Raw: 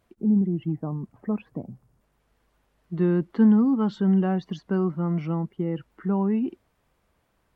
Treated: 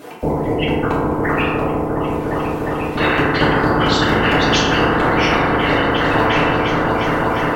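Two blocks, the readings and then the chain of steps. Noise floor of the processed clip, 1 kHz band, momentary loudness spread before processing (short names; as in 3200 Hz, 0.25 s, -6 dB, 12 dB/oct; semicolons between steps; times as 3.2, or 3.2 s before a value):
-22 dBFS, +22.0 dB, 13 LU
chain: LFO high-pass saw up 4.4 Hz 250–3100 Hz; transient shaper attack -2 dB, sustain -6 dB; whisperiser; on a send: repeats that get brighter 0.354 s, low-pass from 400 Hz, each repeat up 1 oct, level -3 dB; on the sum: FDN reverb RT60 1.3 s, low-frequency decay 0.75×, high-frequency decay 0.45×, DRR -6 dB; spectral compressor 4:1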